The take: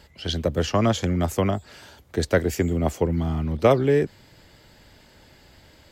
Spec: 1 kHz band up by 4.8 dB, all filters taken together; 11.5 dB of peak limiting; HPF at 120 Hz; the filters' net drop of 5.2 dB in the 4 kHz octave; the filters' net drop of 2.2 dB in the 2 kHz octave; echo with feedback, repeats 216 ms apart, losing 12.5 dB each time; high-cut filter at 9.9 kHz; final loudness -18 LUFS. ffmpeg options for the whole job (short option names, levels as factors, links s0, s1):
-af "highpass=120,lowpass=9900,equalizer=f=1000:t=o:g=8,equalizer=f=2000:t=o:g=-5,equalizer=f=4000:t=o:g=-5.5,alimiter=limit=0.2:level=0:latency=1,aecho=1:1:216|432|648:0.237|0.0569|0.0137,volume=2.66"